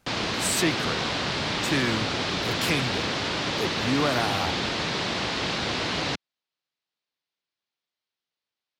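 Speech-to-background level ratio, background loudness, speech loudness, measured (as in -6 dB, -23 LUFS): -2.5 dB, -26.5 LUFS, -29.0 LUFS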